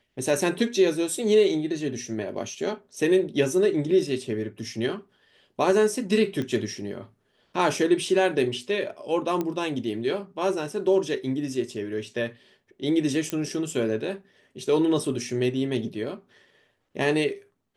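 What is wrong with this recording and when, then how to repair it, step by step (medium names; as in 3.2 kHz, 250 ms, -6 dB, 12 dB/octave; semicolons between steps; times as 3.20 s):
6.42 s: pop -19 dBFS
9.41 s: pop -15 dBFS
13.30 s: pop -13 dBFS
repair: de-click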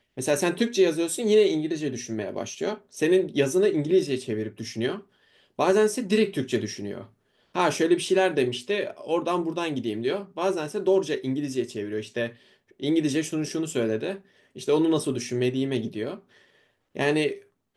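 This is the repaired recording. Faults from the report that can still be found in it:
nothing left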